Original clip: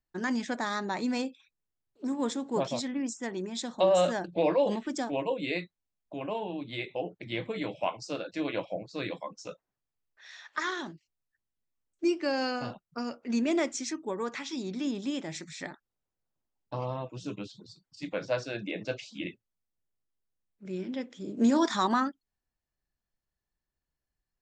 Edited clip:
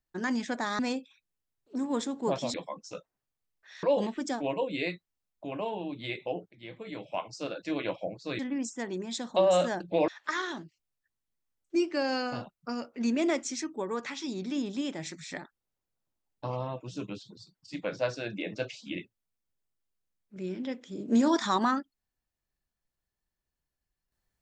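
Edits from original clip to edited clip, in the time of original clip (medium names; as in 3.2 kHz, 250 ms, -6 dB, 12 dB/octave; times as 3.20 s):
0.79–1.08 s: delete
2.83–4.52 s: swap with 9.08–10.37 s
7.20–8.25 s: fade in, from -16.5 dB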